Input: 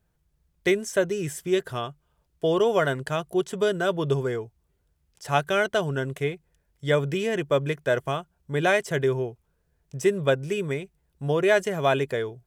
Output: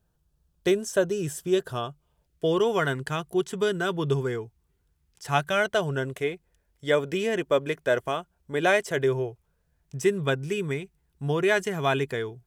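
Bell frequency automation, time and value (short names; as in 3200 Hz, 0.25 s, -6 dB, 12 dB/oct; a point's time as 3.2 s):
bell -10.5 dB 0.36 oct
1.88 s 2100 Hz
2.62 s 590 Hz
5.28 s 590 Hz
6.19 s 140 Hz
8.88 s 140 Hz
10 s 570 Hz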